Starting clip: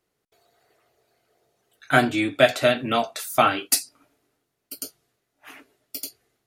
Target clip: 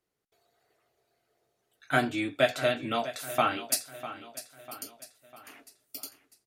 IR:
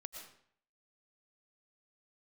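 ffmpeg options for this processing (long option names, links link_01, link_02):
-af "aecho=1:1:649|1298|1947|2596:0.2|0.0938|0.0441|0.0207,volume=-7.5dB"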